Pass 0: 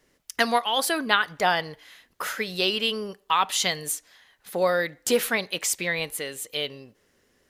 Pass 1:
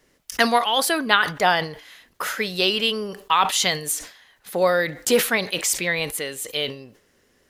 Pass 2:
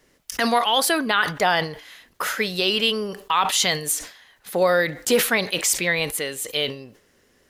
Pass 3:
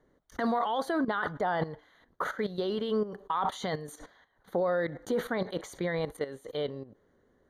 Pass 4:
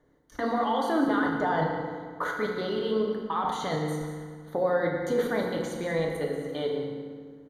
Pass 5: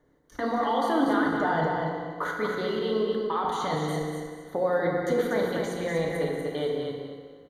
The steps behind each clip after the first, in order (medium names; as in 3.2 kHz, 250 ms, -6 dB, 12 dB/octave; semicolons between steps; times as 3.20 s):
decay stretcher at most 130 dB/s; trim +3.5 dB
peak limiter -10 dBFS, peak gain reduction 8.5 dB; trim +1.5 dB
level held to a coarse grid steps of 13 dB; boxcar filter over 17 samples
delay 184 ms -13 dB; FDN reverb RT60 1.8 s, low-frequency decay 1.25×, high-frequency decay 0.7×, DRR 0 dB
feedback delay 241 ms, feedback 25%, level -5 dB